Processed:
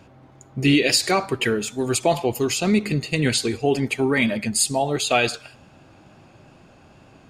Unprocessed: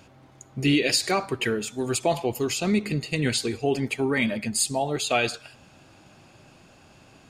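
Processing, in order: wow and flutter 20 cents; mismatched tape noise reduction decoder only; gain +4 dB

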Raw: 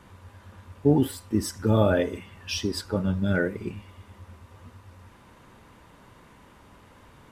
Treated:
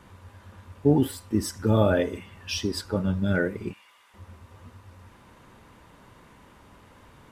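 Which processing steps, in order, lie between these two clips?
3.73–4.14 HPF 1100 Hz 12 dB/oct

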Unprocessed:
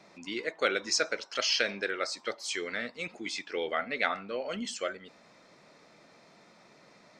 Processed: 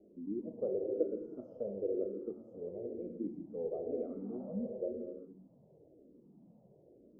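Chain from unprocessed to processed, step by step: inverse Chebyshev low-pass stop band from 1600 Hz, stop band 60 dB; non-linear reverb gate 0.42 s flat, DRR 2 dB; endless phaser -1 Hz; gain +3 dB

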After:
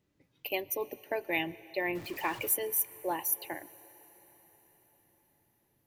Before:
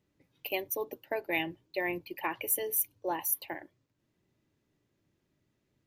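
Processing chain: 1.95–2.54 zero-crossing step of -41 dBFS; on a send: reverb RT60 5.2 s, pre-delay 98 ms, DRR 19 dB

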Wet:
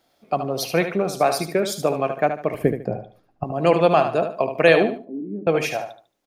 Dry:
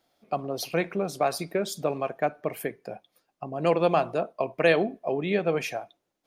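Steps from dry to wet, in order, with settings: 2.54–3.44 tilt -4.5 dB/oct; 4.97–5.47 Butterworth band-pass 260 Hz, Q 2.8; feedback echo 74 ms, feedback 29%, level -8.5 dB; gain +6 dB

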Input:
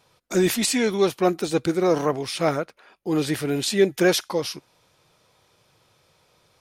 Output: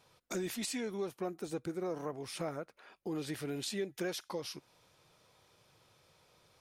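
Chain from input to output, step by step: 0.8–3.15 dynamic EQ 3700 Hz, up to -7 dB, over -44 dBFS, Q 0.8; compressor 3:1, threshold -34 dBFS, peak gain reduction 15.5 dB; gain -5 dB

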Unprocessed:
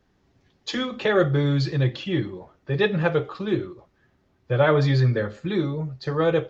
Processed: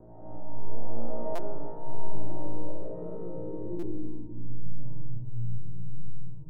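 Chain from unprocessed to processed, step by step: per-bin compression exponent 0.6; LPF 1000 Hz 12 dB/oct; tilt -4.5 dB/oct; sample leveller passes 5; compressor 5:1, threshold -20 dBFS, peak gain reduction 17 dB; resonator 310 Hz, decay 0.46 s, harmonics all, mix 90%; low-pass sweep 710 Hz -> 130 Hz, 2.31–5.26; resonator 58 Hz, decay 0.98 s, harmonics all, mix 100%; digital reverb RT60 1.9 s, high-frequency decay 0.8×, pre-delay 0.105 s, DRR -6 dB; stuck buffer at 1.35/3.79, samples 256, times 5; gain +2.5 dB

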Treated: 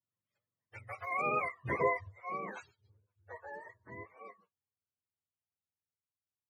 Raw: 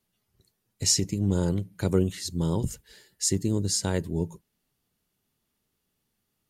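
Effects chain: spectrum mirrored in octaves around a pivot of 450 Hz; Doppler pass-by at 1.59, 31 m/s, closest 9.4 m; gain -2 dB

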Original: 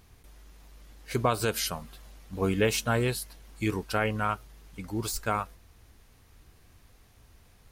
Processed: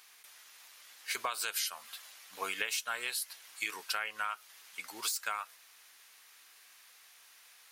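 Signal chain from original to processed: HPF 1500 Hz 12 dB/oct; compressor 8:1, threshold -39 dBFS, peak gain reduction 13 dB; gain +7.5 dB

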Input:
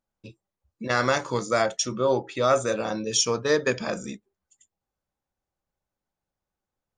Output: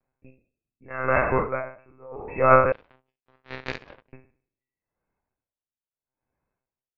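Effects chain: spectral trails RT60 0.73 s; brick-wall FIR low-pass 2700 Hz; monotone LPC vocoder at 8 kHz 130 Hz; 2.72–4.13 power-law curve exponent 3; dB-linear tremolo 0.78 Hz, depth 29 dB; gain +4 dB

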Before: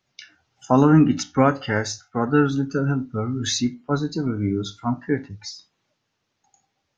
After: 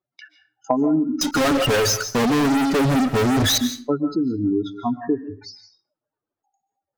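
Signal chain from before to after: spectral contrast raised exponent 2.4; gate -45 dBFS, range -16 dB; band shelf 680 Hz +13 dB 2.8 oct; compressor 6:1, threshold -13 dBFS, peak gain reduction 11 dB; 1.21–3.58 fuzz box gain 39 dB, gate -41 dBFS; reverb RT60 0.35 s, pre-delay 0.105 s, DRR 10.5 dB; gain -4 dB

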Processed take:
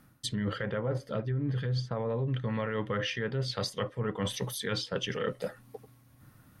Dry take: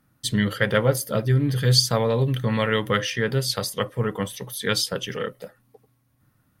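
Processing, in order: treble ducked by the level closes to 1500 Hz, closed at -17 dBFS; limiter -15 dBFS, peak gain reduction 10 dB; reverse; compressor 6:1, threshold -37 dBFS, peak gain reduction 17 dB; reverse; gain +7 dB

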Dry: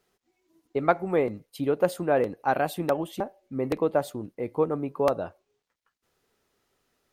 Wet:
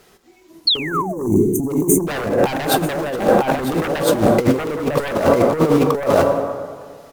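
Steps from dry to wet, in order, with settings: in parallel at -4 dB: bit-crush 6-bit; 0.77–2.07 on the sum: brick-wall FIR band-stop 430–5900 Hz; on a send: echo 0.95 s -5 dB; on the sum: plate-style reverb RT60 1.8 s, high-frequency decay 0.55×, pre-delay 0 ms, DRR 9 dB; sine folder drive 13 dB, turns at -5.5 dBFS; 0.67–1.22 painted sound fall 410–4500 Hz -13 dBFS; negative-ratio compressor -15 dBFS, ratio -0.5; gain -1 dB

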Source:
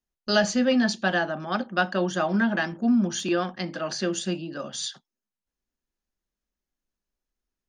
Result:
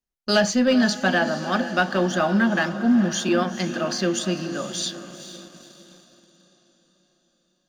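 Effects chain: diffused feedback echo 0.458 s, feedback 53%, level -11.5 dB; sample leveller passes 1

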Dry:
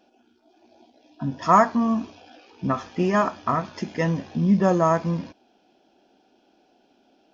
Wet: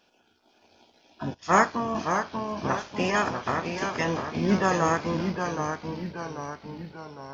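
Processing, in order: spectral limiter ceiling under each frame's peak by 17 dB; echoes that change speed 0.486 s, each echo -1 st, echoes 3, each echo -6 dB; 1.34–1.95 three-band expander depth 70%; gain -4 dB

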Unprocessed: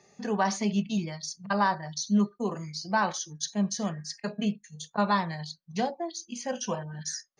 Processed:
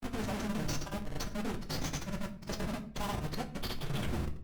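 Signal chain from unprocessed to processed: tape stop at the end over 1.57 s; low shelf 190 Hz -6 dB; in parallel at +1 dB: limiter -21 dBFS, peak gain reduction 8 dB; on the sum: compressor 5:1, threshold -28 dBFS, peak gain reduction 10.5 dB; Schmitt trigger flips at -30 dBFS; time stretch by phase-locked vocoder 0.6×; grains; shoebox room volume 51 m³, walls mixed, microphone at 0.34 m; Opus 48 kbps 48000 Hz

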